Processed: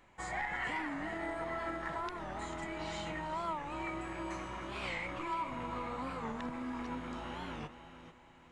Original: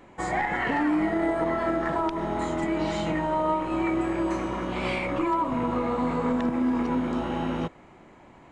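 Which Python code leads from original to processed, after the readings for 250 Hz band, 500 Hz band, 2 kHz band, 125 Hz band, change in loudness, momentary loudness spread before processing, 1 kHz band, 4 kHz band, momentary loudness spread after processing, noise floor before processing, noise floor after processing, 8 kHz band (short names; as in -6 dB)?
-17.0 dB, -15.0 dB, -7.5 dB, -12.5 dB, -12.5 dB, 4 LU, -11.0 dB, -6.5 dB, 6 LU, -51 dBFS, -60 dBFS, -6.0 dB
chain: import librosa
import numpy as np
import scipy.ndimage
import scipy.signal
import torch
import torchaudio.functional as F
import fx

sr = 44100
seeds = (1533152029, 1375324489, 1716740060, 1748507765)

p1 = fx.peak_eq(x, sr, hz=310.0, db=-11.5, octaves=2.7)
p2 = p1 + fx.echo_feedback(p1, sr, ms=439, feedback_pct=38, wet_db=-11.5, dry=0)
p3 = fx.record_warp(p2, sr, rpm=45.0, depth_cents=160.0)
y = F.gain(torch.from_numpy(p3), -6.5).numpy()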